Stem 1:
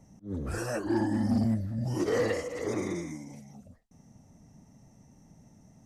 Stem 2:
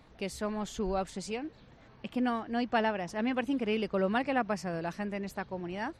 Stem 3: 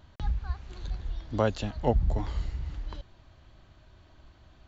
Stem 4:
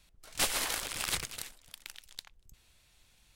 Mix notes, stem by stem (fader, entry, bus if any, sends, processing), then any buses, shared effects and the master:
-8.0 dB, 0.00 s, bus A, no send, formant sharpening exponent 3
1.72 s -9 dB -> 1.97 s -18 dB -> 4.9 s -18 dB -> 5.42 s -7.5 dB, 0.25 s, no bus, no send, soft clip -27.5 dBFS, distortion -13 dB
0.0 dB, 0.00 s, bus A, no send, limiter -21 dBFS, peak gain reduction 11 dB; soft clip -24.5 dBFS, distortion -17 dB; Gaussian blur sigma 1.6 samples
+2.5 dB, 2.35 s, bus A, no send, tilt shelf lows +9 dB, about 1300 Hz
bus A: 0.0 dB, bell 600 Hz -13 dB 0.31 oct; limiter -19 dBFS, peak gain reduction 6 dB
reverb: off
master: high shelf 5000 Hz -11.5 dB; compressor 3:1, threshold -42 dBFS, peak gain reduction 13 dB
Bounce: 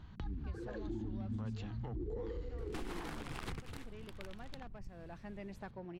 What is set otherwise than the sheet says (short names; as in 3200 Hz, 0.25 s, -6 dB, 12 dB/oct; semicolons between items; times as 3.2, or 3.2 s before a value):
stem 1 -8.0 dB -> -1.5 dB; stem 3: missing Gaussian blur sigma 1.6 samples